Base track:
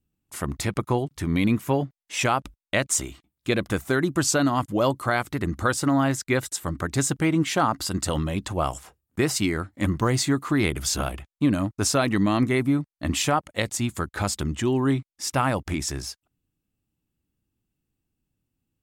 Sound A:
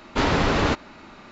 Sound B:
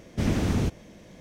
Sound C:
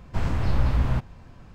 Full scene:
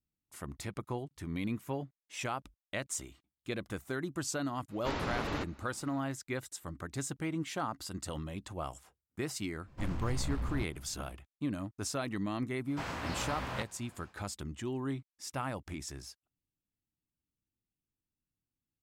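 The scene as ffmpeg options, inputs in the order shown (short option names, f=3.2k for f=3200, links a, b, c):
-filter_complex "[3:a]asplit=2[a][b];[0:a]volume=-14dB[c];[a]volume=18.5dB,asoftclip=hard,volume=-18.5dB[d];[b]highpass=f=810:p=1[e];[1:a]atrim=end=1.31,asetpts=PTS-STARTPTS,volume=-15dB,afade=t=in:d=0.004:c=hsin,afade=t=out:st=1.306:d=0.004:c=hsin,adelay=206829S[f];[d]atrim=end=1.54,asetpts=PTS-STARTPTS,volume=-12dB,afade=t=in:d=0.05,afade=t=out:st=1.49:d=0.05,adelay=9640[g];[e]atrim=end=1.54,asetpts=PTS-STARTPTS,volume=-1dB,afade=t=in:d=0.1,afade=t=out:st=1.44:d=0.1,adelay=12630[h];[c][f][g][h]amix=inputs=4:normalize=0"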